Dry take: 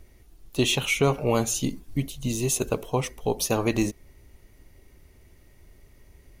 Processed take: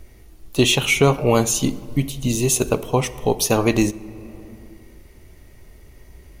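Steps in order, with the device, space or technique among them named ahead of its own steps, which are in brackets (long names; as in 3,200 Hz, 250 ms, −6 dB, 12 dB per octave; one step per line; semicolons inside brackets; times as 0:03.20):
compressed reverb return (on a send at −5.5 dB: convolution reverb RT60 1.8 s, pre-delay 13 ms + downward compressor 6 to 1, threshold −34 dBFS, peak gain reduction 15.5 dB)
on the sum: level +6.5 dB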